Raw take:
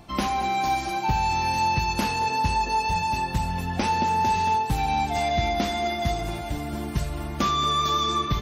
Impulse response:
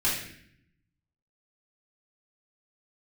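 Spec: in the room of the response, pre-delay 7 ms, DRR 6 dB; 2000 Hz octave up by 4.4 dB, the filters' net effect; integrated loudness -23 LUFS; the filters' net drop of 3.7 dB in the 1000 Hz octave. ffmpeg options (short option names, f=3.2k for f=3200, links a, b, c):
-filter_complex "[0:a]equalizer=f=1k:t=o:g=-6,equalizer=f=2k:t=o:g=7,asplit=2[a][b];[1:a]atrim=start_sample=2205,adelay=7[c];[b][c]afir=irnorm=-1:irlink=0,volume=-16.5dB[d];[a][d]amix=inputs=2:normalize=0,volume=1.5dB"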